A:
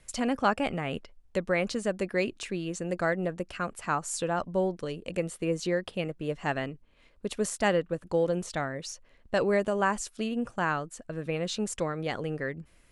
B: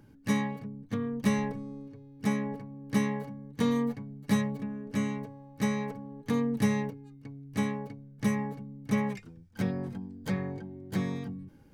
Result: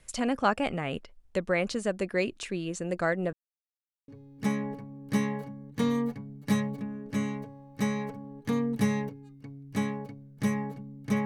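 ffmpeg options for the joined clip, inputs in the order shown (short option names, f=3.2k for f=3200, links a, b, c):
-filter_complex "[0:a]apad=whole_dur=11.25,atrim=end=11.25,asplit=2[a][b];[a]atrim=end=3.33,asetpts=PTS-STARTPTS,afade=t=out:st=3.326:d=0.004:c=hsin[c];[b]atrim=start=3.33:end=4.08,asetpts=PTS-STARTPTS,volume=0[d];[1:a]atrim=start=1.89:end=9.06,asetpts=PTS-STARTPTS,afade=t=in:d=0.004:c=hsin[e];[c][d][e]concat=n=3:v=0:a=1"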